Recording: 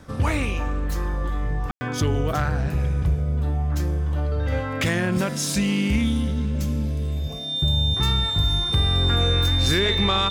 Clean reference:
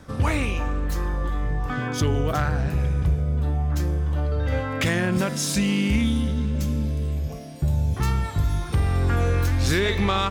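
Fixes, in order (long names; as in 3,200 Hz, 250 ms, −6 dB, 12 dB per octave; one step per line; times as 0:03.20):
notch filter 3,600 Hz, Q 30
ambience match 0:01.71–0:01.81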